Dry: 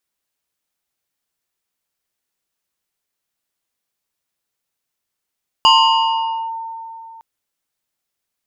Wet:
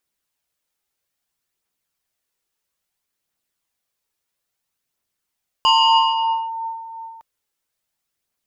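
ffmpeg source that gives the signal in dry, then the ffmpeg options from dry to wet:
-f lavfi -i "aevalsrc='0.501*pow(10,-3*t/3.06)*sin(2*PI*906*t+1.5*clip(1-t/0.86,0,1)*sin(2*PI*2.16*906*t))':duration=1.56:sample_rate=44100"
-af "alimiter=limit=-12dB:level=0:latency=1,aphaser=in_gain=1:out_gain=1:delay=2.5:decay=0.29:speed=0.6:type=triangular"

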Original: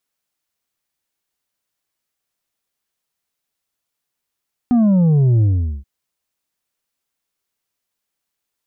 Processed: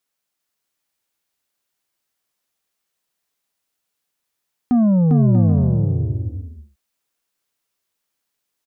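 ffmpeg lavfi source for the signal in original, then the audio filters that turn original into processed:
-f lavfi -i "aevalsrc='0.282*clip((1.13-t)/0.42,0,1)*tanh(1.78*sin(2*PI*250*1.13/log(65/250)*(exp(log(65/250)*t/1.13)-1)))/tanh(1.78)':duration=1.13:sample_rate=44100"
-af "lowshelf=frequency=130:gain=-4.5,aecho=1:1:400|640|784|870.4|922.2:0.631|0.398|0.251|0.158|0.1"

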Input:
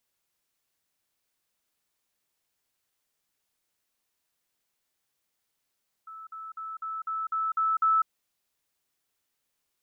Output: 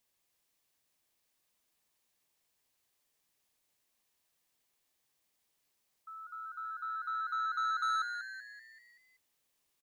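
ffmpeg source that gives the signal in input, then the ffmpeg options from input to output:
-f lavfi -i "aevalsrc='pow(10,(-40.5+3*floor(t/0.25))/20)*sin(2*PI*1310*t)*clip(min(mod(t,0.25),0.2-mod(t,0.25))/0.005,0,1)':duration=2:sample_rate=44100"
-filter_complex "[0:a]bandreject=frequency=1400:width=7.4,asoftclip=type=tanh:threshold=-30.5dB,asplit=2[link_01][link_02];[link_02]asplit=6[link_03][link_04][link_05][link_06][link_07][link_08];[link_03]adelay=191,afreqshift=120,volume=-8dB[link_09];[link_04]adelay=382,afreqshift=240,volume=-13.8dB[link_10];[link_05]adelay=573,afreqshift=360,volume=-19.7dB[link_11];[link_06]adelay=764,afreqshift=480,volume=-25.5dB[link_12];[link_07]adelay=955,afreqshift=600,volume=-31.4dB[link_13];[link_08]adelay=1146,afreqshift=720,volume=-37.2dB[link_14];[link_09][link_10][link_11][link_12][link_13][link_14]amix=inputs=6:normalize=0[link_15];[link_01][link_15]amix=inputs=2:normalize=0"

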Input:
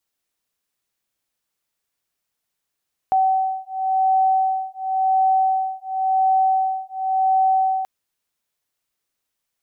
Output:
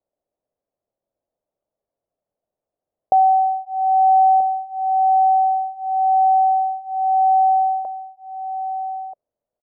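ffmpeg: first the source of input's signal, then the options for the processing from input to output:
-f lavfi -i "aevalsrc='0.106*(sin(2*PI*761*t)+sin(2*PI*761.93*t))':duration=4.73:sample_rate=44100"
-filter_complex "[0:a]lowpass=frequency=610:width_type=q:width=4.4,asplit=2[link_01][link_02];[link_02]adelay=1283,volume=-11dB,highshelf=frequency=4000:gain=-28.9[link_03];[link_01][link_03]amix=inputs=2:normalize=0"

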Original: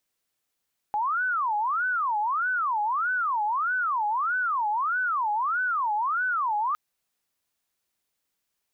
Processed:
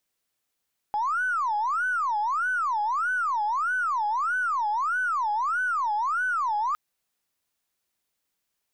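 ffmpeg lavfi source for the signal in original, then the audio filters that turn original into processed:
-f lavfi -i "aevalsrc='0.0708*sin(2*PI*(1170.5*t-339.5/(2*PI*1.6)*sin(2*PI*1.6*t)))':duration=5.81:sample_rate=44100"
-af "aeval=exprs='0.075*(cos(1*acos(clip(val(0)/0.075,-1,1)))-cos(1*PI/2))+0.00237*(cos(6*acos(clip(val(0)/0.075,-1,1)))-cos(6*PI/2))':channel_layout=same"

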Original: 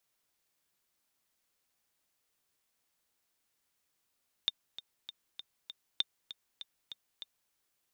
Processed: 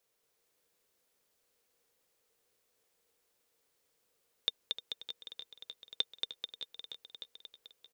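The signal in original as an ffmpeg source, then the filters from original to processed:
-f lavfi -i "aevalsrc='pow(10,(-15.5-14.5*gte(mod(t,5*60/197),60/197))/20)*sin(2*PI*3620*mod(t,60/197))*exp(-6.91*mod(t,60/197)/0.03)':duration=3.04:sample_rate=44100"
-af "equalizer=frequency=470:width_type=o:width=0.47:gain=14.5,aecho=1:1:230|437|623.3|791|941.9:0.631|0.398|0.251|0.158|0.1"

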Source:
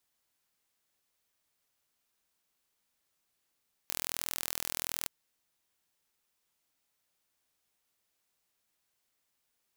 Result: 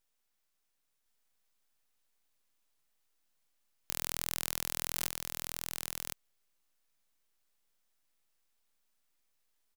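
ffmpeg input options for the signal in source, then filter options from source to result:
-f lavfi -i "aevalsrc='0.447*eq(mod(n,1068),0)':duration=1.18:sample_rate=44100"
-af "lowshelf=frequency=200:gain=7,aeval=exprs='abs(val(0))':channel_layout=same,aecho=1:1:1060:0.668"

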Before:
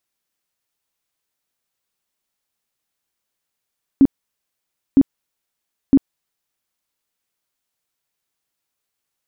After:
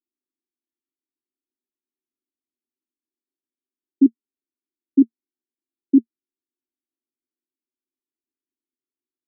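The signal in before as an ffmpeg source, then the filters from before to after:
-f lavfi -i "aevalsrc='0.501*sin(2*PI*273*mod(t,0.96))*lt(mod(t,0.96),12/273)':duration=2.88:sample_rate=44100"
-af "asuperpass=centerf=300:order=12:qfactor=1.8"

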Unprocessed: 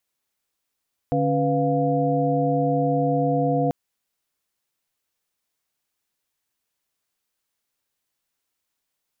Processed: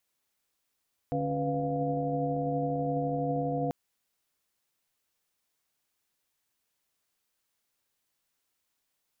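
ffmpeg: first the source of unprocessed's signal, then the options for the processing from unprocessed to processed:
-f lavfi -i "aevalsrc='0.0631*(sin(2*PI*146.83*t)+sin(2*PI*277.18*t)+sin(2*PI*493.88*t)+sin(2*PI*698.46*t))':duration=2.59:sample_rate=44100"
-af "alimiter=limit=-23.5dB:level=0:latency=1:release=12"

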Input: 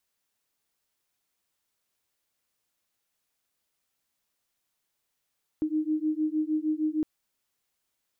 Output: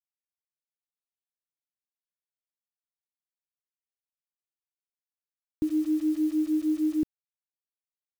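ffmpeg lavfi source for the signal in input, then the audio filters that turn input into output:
-f lavfi -i "aevalsrc='0.0398*(sin(2*PI*306*t)+sin(2*PI*312.5*t))':duration=1.41:sample_rate=44100"
-filter_complex "[0:a]acrossover=split=340[link_01][link_02];[link_01]acontrast=39[link_03];[link_02]alimiter=level_in=16.5dB:limit=-24dB:level=0:latency=1:release=116,volume=-16.5dB[link_04];[link_03][link_04]amix=inputs=2:normalize=0,acrusher=bits=7:mix=0:aa=0.000001"

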